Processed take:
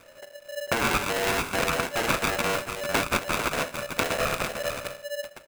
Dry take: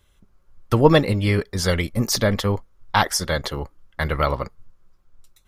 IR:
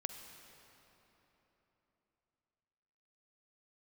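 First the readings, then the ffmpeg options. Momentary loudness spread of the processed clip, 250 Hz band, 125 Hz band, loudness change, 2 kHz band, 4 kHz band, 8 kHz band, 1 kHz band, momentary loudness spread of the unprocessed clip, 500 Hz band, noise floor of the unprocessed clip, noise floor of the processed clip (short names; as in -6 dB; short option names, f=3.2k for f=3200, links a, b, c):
10 LU, -10.0 dB, -15.0 dB, -5.5 dB, +0.5 dB, -3.0 dB, -3.0 dB, -2.5 dB, 14 LU, -6.0 dB, -60 dBFS, -50 dBFS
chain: -filter_complex "[0:a]highshelf=f=6k:g=9.5,bandreject=f=60:t=h:w=6,bandreject=f=120:t=h:w=6,bandreject=f=180:t=h:w=6,bandreject=f=240:t=h:w=6,bandreject=f=300:t=h:w=6,bandreject=f=360:t=h:w=6,bandreject=f=420:t=h:w=6,bandreject=f=480:t=h:w=6,bandreject=f=540:t=h:w=6,bandreject=f=600:t=h:w=6,acrossover=split=1500[a][b];[a]asoftclip=type=tanh:threshold=-17dB[c];[c][b]amix=inputs=2:normalize=0,acrusher=samples=35:mix=1:aa=0.000001,acompressor=threshold=-32dB:ratio=6,asplit=2[d][e];[e]aecho=0:1:448:0.422[f];[d][f]amix=inputs=2:normalize=0,acrossover=split=3900[g][h];[h]acompressor=threshold=-45dB:ratio=4:attack=1:release=60[i];[g][i]amix=inputs=2:normalize=0,equalizer=f=125:t=o:w=1:g=-4,equalizer=f=250:t=o:w=1:g=-6,equalizer=f=500:t=o:w=1:g=-5,equalizer=f=1k:t=o:w=1:g=6,equalizer=f=2k:t=o:w=1:g=10,equalizer=f=4k:t=o:w=1:g=-12,equalizer=f=8k:t=o:w=1:g=9,aeval=exprs='val(0)*sgn(sin(2*PI*580*n/s))':c=same,volume=8.5dB"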